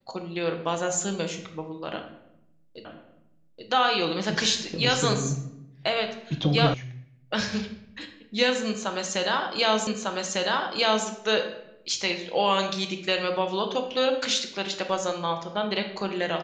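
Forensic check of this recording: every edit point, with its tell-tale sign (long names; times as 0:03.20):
0:02.85: the same again, the last 0.83 s
0:06.74: cut off before it has died away
0:09.87: the same again, the last 1.2 s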